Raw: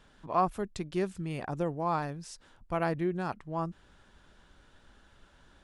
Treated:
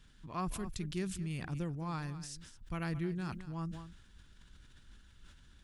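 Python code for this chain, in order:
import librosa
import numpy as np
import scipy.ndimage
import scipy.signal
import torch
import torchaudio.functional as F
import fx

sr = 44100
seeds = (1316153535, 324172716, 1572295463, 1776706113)

y = fx.tone_stack(x, sr, knobs='6-0-2')
y = y + 10.0 ** (-15.5 / 20.0) * np.pad(y, (int(212 * sr / 1000.0), 0))[:len(y)]
y = fx.sustainer(y, sr, db_per_s=57.0)
y = y * librosa.db_to_amplitude(14.0)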